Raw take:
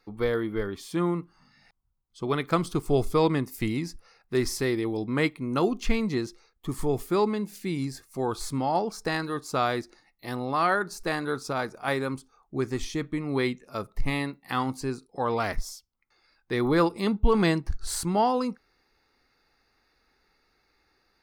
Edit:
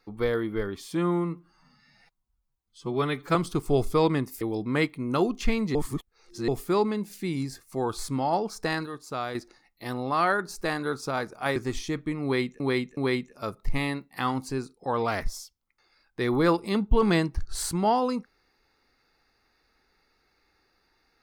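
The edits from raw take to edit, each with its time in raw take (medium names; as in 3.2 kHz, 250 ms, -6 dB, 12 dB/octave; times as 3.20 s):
0.95–2.55 s: stretch 1.5×
3.61–4.83 s: delete
6.17–6.90 s: reverse
9.28–9.77 s: gain -6.5 dB
11.98–12.62 s: delete
13.29–13.66 s: loop, 3 plays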